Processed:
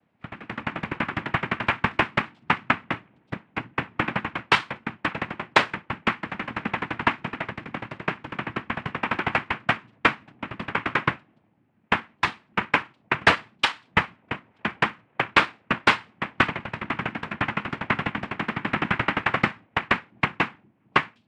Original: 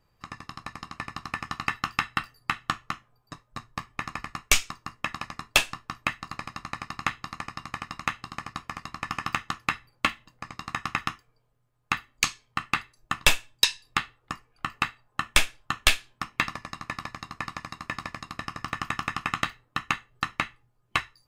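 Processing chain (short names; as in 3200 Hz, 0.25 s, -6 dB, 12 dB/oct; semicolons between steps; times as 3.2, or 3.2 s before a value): AGC gain up to 10.5 dB; 7.5–8.29 fixed phaser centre 1900 Hz, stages 8; noise vocoder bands 4; air absorption 460 m; on a send: reverb, pre-delay 5 ms, DRR 20 dB; on the sum: gain +3 dB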